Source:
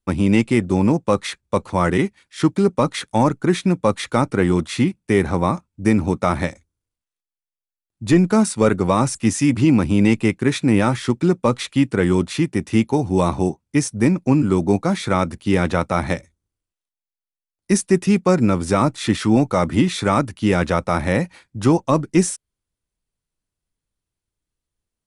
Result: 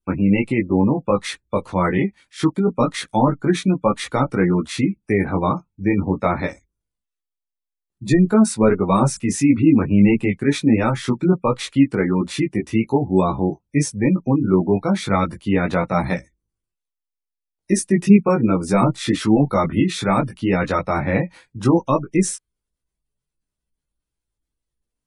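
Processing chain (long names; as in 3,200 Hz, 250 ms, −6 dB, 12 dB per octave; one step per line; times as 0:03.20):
gate on every frequency bin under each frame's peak −30 dB strong
multi-voice chorus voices 6, 0.23 Hz, delay 18 ms, depth 3.7 ms
level +2.5 dB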